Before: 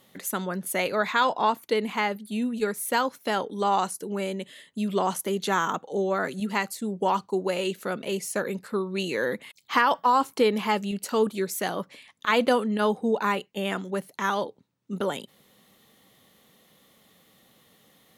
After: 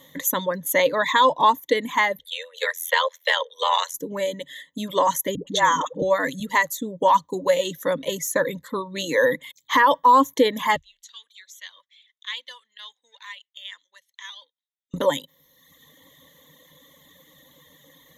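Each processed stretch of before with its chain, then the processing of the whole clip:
0:02.19–0:03.94: parametric band 2,900 Hz +14 dB 1.6 octaves + amplitude modulation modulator 84 Hz, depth 85% + Chebyshev high-pass with heavy ripple 440 Hz, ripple 3 dB
0:05.35–0:06.02: low-pass filter 8,700 Hz + all-pass dispersion highs, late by 121 ms, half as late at 420 Hz
0:10.76–0:14.94: gain on one half-wave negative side −3 dB + four-pole ladder band-pass 3,600 Hz, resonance 30% + parametric band 4,000 Hz +2 dB 1.6 octaves
whole clip: reverb reduction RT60 1 s; EQ curve with evenly spaced ripples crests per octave 1.1, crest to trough 15 dB; boost into a limiter +11 dB; level −6.5 dB

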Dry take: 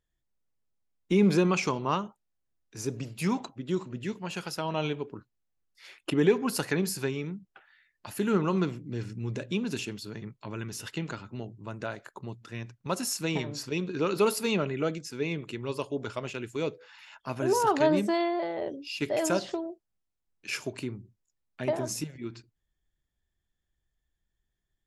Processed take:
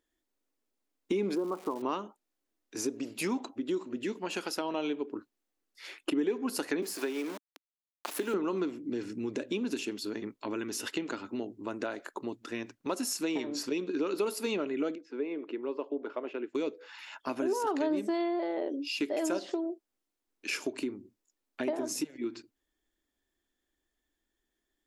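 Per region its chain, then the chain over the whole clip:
0:01.34–0:01.81: Butterworth low-pass 1,200 Hz + low-shelf EQ 440 Hz −8.5 dB + surface crackle 440 per second −39 dBFS
0:06.82–0:08.34: centre clipping without the shift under −39.5 dBFS + high-pass filter 320 Hz + multiband upward and downward compressor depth 40%
0:14.95–0:16.55: high-pass filter 350 Hz + head-to-tape spacing loss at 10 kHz 44 dB
whole clip: low shelf with overshoot 200 Hz −11.5 dB, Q 3; downward compressor 3 to 1, threshold −36 dBFS; level +4 dB

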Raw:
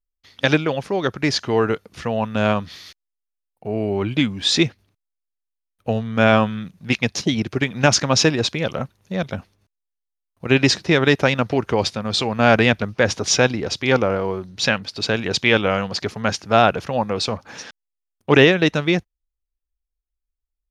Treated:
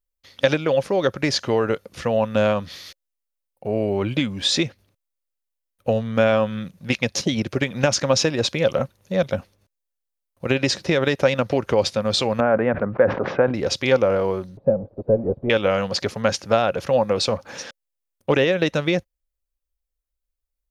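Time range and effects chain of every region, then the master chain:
0:12.40–0:13.54: low-pass filter 1,600 Hz 24 dB per octave + parametric band 76 Hz −14 dB 1 octave + level that may fall only so fast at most 90 dB per second
0:14.57–0:15.50: converter with a step at zero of −17 dBFS + Chebyshev low-pass filter 610 Hz, order 3 + expander for the loud parts 2.5 to 1, over −29 dBFS
whole clip: high-shelf EQ 8,800 Hz +6.5 dB; downward compressor, threshold −17 dBFS; parametric band 540 Hz +10.5 dB 0.23 octaves

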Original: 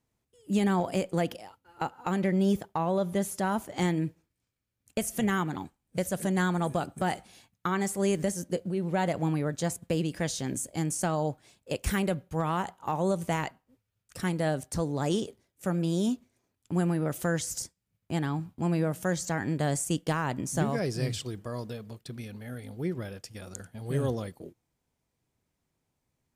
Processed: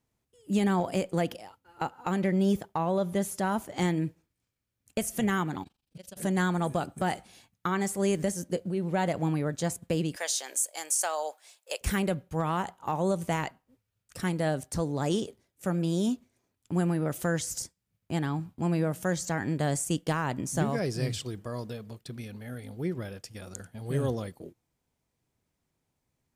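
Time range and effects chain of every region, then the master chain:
0:05.63–0:06.17: flat-topped bell 3,700 Hz +11 dB 1.3 octaves + downward compressor 8 to 1, threshold −39 dBFS + amplitude modulation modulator 24 Hz, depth 85%
0:10.16–0:11.81: high-pass filter 550 Hz 24 dB per octave + high-shelf EQ 3,900 Hz +8 dB
whole clip: no processing

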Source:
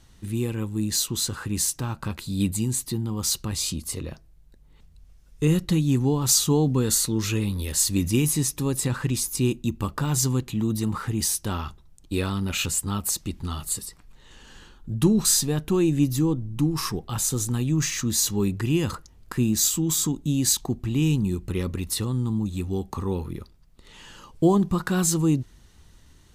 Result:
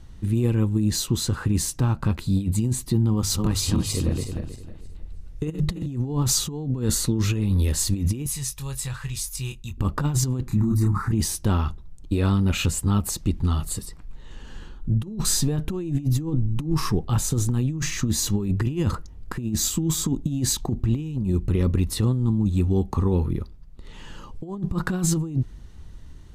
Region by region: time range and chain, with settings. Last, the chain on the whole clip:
0:03.14–0:05.86: feedback delay that plays each chunk backwards 158 ms, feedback 52%, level −2 dB + mains-hum notches 50/100/150 Hz
0:08.26–0:09.78: guitar amp tone stack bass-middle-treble 10-0-10 + double-tracking delay 22 ms −7 dB
0:10.47–0:11.12: phaser with its sweep stopped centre 1,300 Hz, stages 4 + double-tracking delay 30 ms −2.5 dB
whole clip: spectral tilt −2 dB per octave; compressor whose output falls as the input rises −21 dBFS, ratio −0.5

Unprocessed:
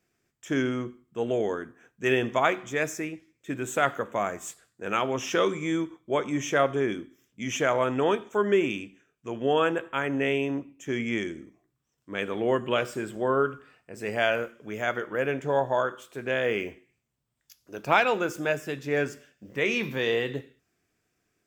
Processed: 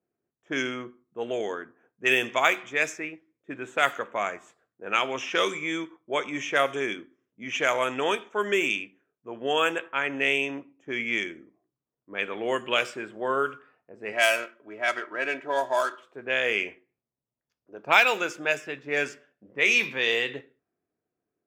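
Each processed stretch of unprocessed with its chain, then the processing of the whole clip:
0:14.12–0:16.03: running median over 9 samples + low-shelf EQ 320 Hz −6.5 dB + comb filter 3.1 ms
whole clip: dynamic equaliser 2,400 Hz, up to +5 dB, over −45 dBFS, Q 2.5; low-pass that shuts in the quiet parts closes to 600 Hz, open at −18.5 dBFS; RIAA equalisation recording

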